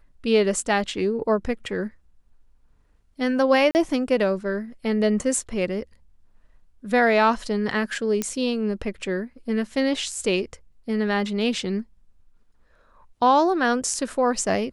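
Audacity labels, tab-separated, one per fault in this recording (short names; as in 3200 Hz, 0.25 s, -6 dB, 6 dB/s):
3.710000	3.750000	gap 39 ms
8.220000	8.220000	pop -10 dBFS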